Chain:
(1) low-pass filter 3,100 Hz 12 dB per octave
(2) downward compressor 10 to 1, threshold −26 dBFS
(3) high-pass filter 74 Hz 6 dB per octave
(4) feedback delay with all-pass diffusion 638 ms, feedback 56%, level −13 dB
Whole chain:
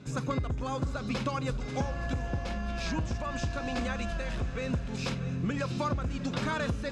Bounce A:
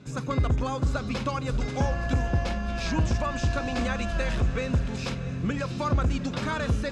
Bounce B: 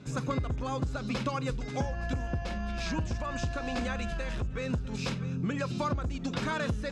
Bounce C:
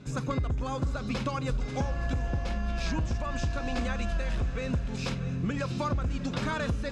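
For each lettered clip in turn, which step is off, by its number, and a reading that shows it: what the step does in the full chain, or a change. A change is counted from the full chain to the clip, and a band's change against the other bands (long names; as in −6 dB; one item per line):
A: 2, average gain reduction 4.5 dB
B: 4, echo-to-direct ratio −11.5 dB to none audible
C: 3, 125 Hz band +2.0 dB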